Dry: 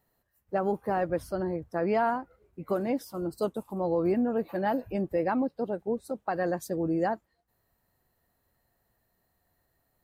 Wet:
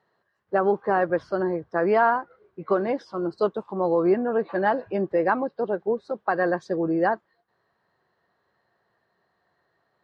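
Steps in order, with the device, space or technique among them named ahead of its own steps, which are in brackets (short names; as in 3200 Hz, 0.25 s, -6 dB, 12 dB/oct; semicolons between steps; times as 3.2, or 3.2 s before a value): kitchen radio (speaker cabinet 180–4500 Hz, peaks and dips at 260 Hz -8 dB, 390 Hz +4 dB, 1100 Hz +6 dB, 1600 Hz +6 dB, 2500 Hz -4 dB); gain +5 dB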